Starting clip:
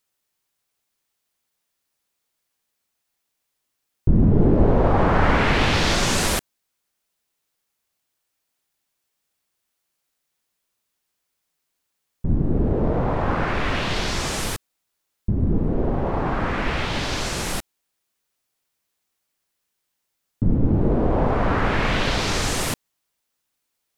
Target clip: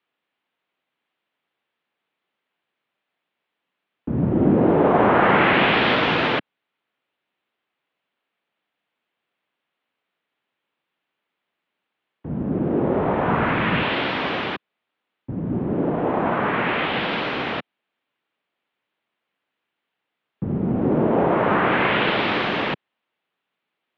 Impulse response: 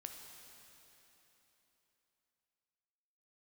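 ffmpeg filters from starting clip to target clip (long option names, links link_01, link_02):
-filter_complex "[0:a]highpass=frequency=260:width_type=q:width=0.5412,highpass=frequency=260:width_type=q:width=1.307,lowpass=frequency=3400:width_type=q:width=0.5176,lowpass=frequency=3400:width_type=q:width=0.7071,lowpass=frequency=3400:width_type=q:width=1.932,afreqshift=-87,asettb=1/sr,asplit=3[link_01][link_02][link_03];[link_01]atrim=end=12.844[link_04];[link_02]atrim=start=12.84:end=13.83,asetpts=PTS-STARTPTS,afade=type=in:duration=0.004:curve=qsin,afade=type=out:start_time=0.986:duration=0.004:curve=qsin,asubboost=boost=10:cutoff=220[link_05];[link_03]atrim=start=13.826[link_06];[link_04][link_05]acrossfade=duration=0.004:curve1=hsin:curve2=qsin[link_07];[link_07][link_06]acrossfade=duration=0.004:curve1=qsin:curve2=hsin,volume=4.5dB"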